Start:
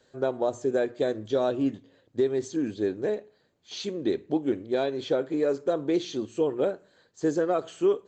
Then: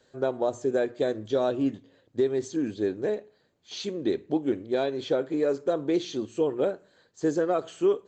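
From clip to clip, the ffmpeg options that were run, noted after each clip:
ffmpeg -i in.wav -af anull out.wav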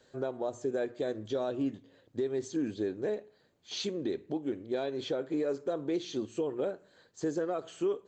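ffmpeg -i in.wav -af "alimiter=limit=-23.5dB:level=0:latency=1:release=359" out.wav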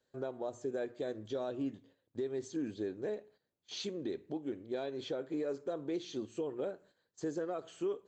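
ffmpeg -i in.wav -af "agate=range=-12dB:threshold=-56dB:ratio=16:detection=peak,volume=-5dB" out.wav

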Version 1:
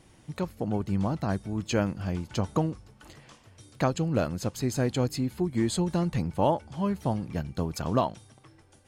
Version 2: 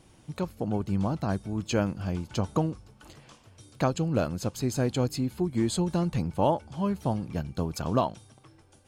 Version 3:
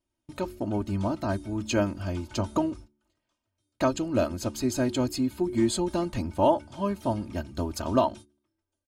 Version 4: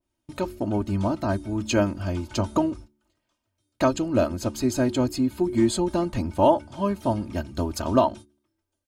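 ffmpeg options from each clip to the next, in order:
ffmpeg -i in.wav -af "equalizer=frequency=1900:width=5.1:gain=-5.5" out.wav
ffmpeg -i in.wav -af "agate=range=-28dB:threshold=-43dB:ratio=16:detection=peak,aecho=1:1:3.2:0.79,bandreject=frequency=72.42:width_type=h:width=4,bandreject=frequency=144.84:width_type=h:width=4,bandreject=frequency=217.26:width_type=h:width=4,bandreject=frequency=289.68:width_type=h:width=4,bandreject=frequency=362.1:width_type=h:width=4" out.wav
ffmpeg -i in.wav -af "adynamicequalizer=threshold=0.00891:dfrequency=1800:dqfactor=0.7:tfrequency=1800:tqfactor=0.7:attack=5:release=100:ratio=0.375:range=2.5:mode=cutabove:tftype=highshelf,volume=3.5dB" out.wav

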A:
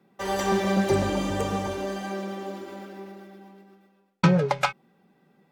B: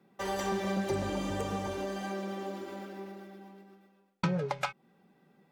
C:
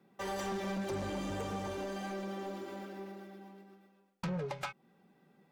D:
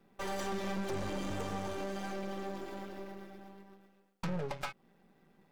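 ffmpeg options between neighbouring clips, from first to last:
ffmpeg -i in.wav -af "acompressor=threshold=-31dB:ratio=2,volume=-2.5dB" out.wav
ffmpeg -i in.wav -af "asoftclip=type=tanh:threshold=-30.5dB,volume=-1.5dB" out.wav
ffmpeg -i in.wav -af "aeval=exprs='if(lt(val(0),0),0.251*val(0),val(0))':channel_layout=same,volume=3.5dB" out.wav

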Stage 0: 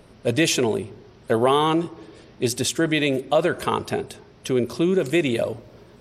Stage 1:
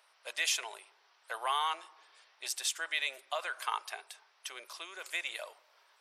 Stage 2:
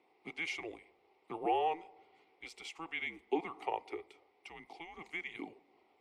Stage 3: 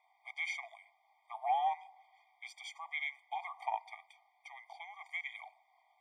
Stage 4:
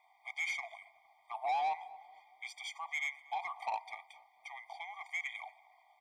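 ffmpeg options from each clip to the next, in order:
ffmpeg -i in.wav -af "highpass=frequency=880:width=0.5412,highpass=frequency=880:width=1.3066,volume=-8dB" out.wav
ffmpeg -i in.wav -filter_complex "[0:a]asplit=3[link_01][link_02][link_03];[link_01]bandpass=frequency=730:width_type=q:width=8,volume=0dB[link_04];[link_02]bandpass=frequency=1090:width_type=q:width=8,volume=-6dB[link_05];[link_03]bandpass=frequency=2440:width_type=q:width=8,volume=-9dB[link_06];[link_04][link_05][link_06]amix=inputs=3:normalize=0,afreqshift=-330,volume=8dB" out.wav
ffmpeg -i in.wav -af "afftfilt=real='re*eq(mod(floor(b*sr/1024/620),2),1)':imag='im*eq(mod(floor(b*sr/1024/620),2),1)':win_size=1024:overlap=0.75,volume=1.5dB" out.wav
ffmpeg -i in.wav -filter_complex "[0:a]asoftclip=type=tanh:threshold=-33.5dB,asplit=2[link_01][link_02];[link_02]adelay=231,lowpass=frequency=1200:poles=1,volume=-17.5dB,asplit=2[link_03][link_04];[link_04]adelay=231,lowpass=frequency=1200:poles=1,volume=0.5,asplit=2[link_05][link_06];[link_06]adelay=231,lowpass=frequency=1200:poles=1,volume=0.5,asplit=2[link_07][link_08];[link_08]adelay=231,lowpass=frequency=1200:poles=1,volume=0.5[link_09];[link_01][link_03][link_05][link_07][link_09]amix=inputs=5:normalize=0,volume=4dB" out.wav

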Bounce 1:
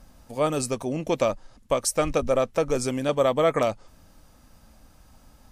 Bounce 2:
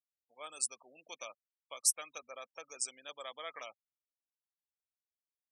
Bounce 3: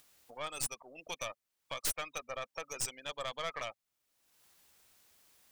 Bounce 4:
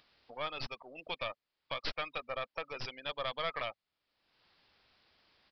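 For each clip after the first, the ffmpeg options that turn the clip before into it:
ffmpeg -i in.wav -af "afftfilt=real='re*gte(hypot(re,im),0.0224)':imag='im*gte(hypot(re,im),0.0224)':win_size=1024:overlap=0.75,highpass=frequency=630:poles=1,aderivative,volume=-2.5dB" out.wav
ffmpeg -i in.wav -filter_complex "[0:a]asplit=2[link_01][link_02];[link_02]acompressor=mode=upward:threshold=-41dB:ratio=2.5,volume=-1dB[link_03];[link_01][link_03]amix=inputs=2:normalize=0,aeval=exprs='0.0596*(abs(mod(val(0)/0.0596+3,4)-2)-1)':channel_layout=same,aeval=exprs='(tanh(44.7*val(0)+0.6)-tanh(0.6))/44.7':channel_layout=same,volume=3.5dB" out.wav
ffmpeg -i in.wav -af "aresample=11025,aresample=44100,volume=2.5dB" out.wav

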